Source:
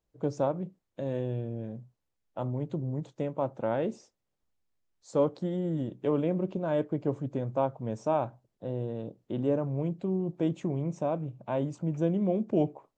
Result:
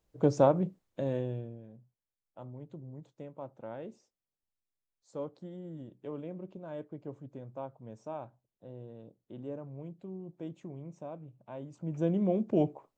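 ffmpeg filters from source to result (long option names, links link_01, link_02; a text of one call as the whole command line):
ffmpeg -i in.wav -af "volume=17dB,afade=type=out:start_time=0.66:duration=0.57:silence=0.446684,afade=type=out:start_time=1.23:duration=0.38:silence=0.281838,afade=type=in:start_time=11.69:duration=0.43:silence=0.251189" out.wav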